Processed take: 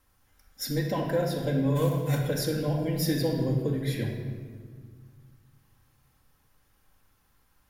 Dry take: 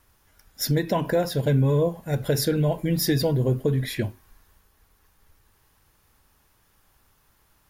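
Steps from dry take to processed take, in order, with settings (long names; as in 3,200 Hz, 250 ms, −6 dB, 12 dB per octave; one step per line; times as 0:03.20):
0:01.75–0:02.18: spectral envelope flattened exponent 0.6
convolution reverb RT60 1.8 s, pre-delay 4 ms, DRR −0.5 dB
level −8 dB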